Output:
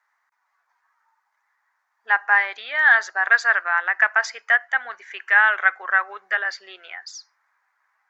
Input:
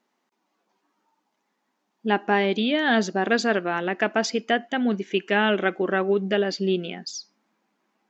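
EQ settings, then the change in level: HPF 960 Hz 24 dB/oct; resonant high shelf 2300 Hz -7.5 dB, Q 3; +5.5 dB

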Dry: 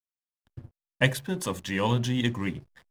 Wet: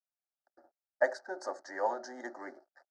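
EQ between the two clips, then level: elliptic band-pass 500–4700 Hz, stop band 50 dB; Butterworth band-stop 2600 Hz, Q 0.62; fixed phaser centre 700 Hz, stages 8; +6.0 dB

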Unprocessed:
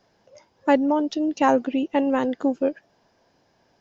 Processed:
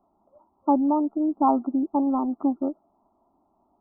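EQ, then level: brick-wall FIR low-pass 1400 Hz; fixed phaser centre 490 Hz, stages 6; 0.0 dB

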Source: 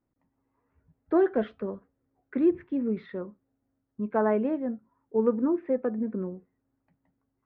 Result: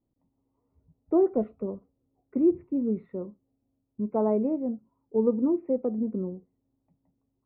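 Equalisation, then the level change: running mean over 27 samples; air absorption 290 m; +2.0 dB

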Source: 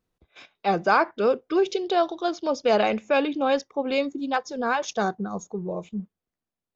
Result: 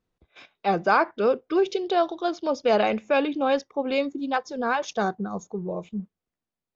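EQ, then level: air absorption 58 m; 0.0 dB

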